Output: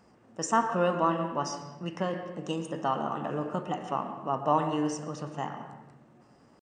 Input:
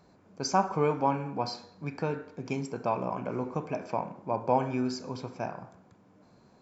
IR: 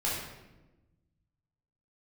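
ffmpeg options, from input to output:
-filter_complex "[0:a]asetrate=52444,aresample=44100,atempo=0.840896,asplit=2[s0][s1];[1:a]atrim=start_sample=2205,lowpass=4000,adelay=110[s2];[s1][s2]afir=irnorm=-1:irlink=0,volume=0.15[s3];[s0][s3]amix=inputs=2:normalize=0"

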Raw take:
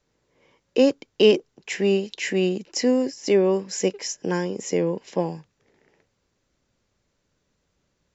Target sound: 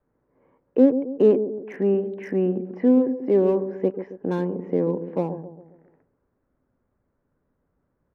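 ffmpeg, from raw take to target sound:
-filter_complex "[0:a]lowpass=f=1500:w=0.5412,lowpass=f=1500:w=1.3066,equalizer=f=260:w=7.3:g=6,acrossover=split=810[s0][s1];[s0]aecho=1:1:135|270|405|540|675:0.335|0.151|0.0678|0.0305|0.0137[s2];[s1]asoftclip=type=hard:threshold=0.0158[s3];[s2][s3]amix=inputs=2:normalize=0" -ar 48000 -c:a libmp3lame -b:a 96k

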